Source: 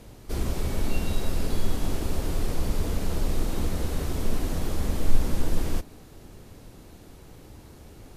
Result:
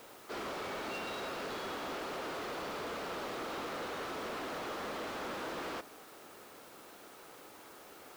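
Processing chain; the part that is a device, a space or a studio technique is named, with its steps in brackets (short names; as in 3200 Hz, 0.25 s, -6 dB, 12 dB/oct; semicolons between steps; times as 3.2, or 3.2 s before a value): drive-through speaker (BPF 490–3500 Hz; bell 1300 Hz +6 dB 0.49 oct; hard clip -37.5 dBFS, distortion -12 dB; white noise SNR 18 dB); gain +1 dB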